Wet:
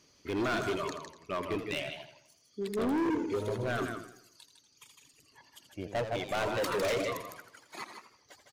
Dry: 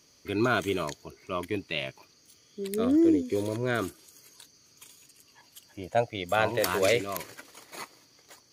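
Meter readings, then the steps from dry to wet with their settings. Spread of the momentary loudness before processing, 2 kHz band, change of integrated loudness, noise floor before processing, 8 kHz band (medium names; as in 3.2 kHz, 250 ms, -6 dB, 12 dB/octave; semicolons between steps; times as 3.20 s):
20 LU, -4.5 dB, -5.5 dB, -61 dBFS, -6.5 dB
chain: delay 155 ms -5 dB; reverb removal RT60 1.6 s; treble shelf 7.3 kHz -11.5 dB; hard clipper -28 dBFS, distortion -6 dB; modulated delay 84 ms, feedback 46%, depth 115 cents, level -10 dB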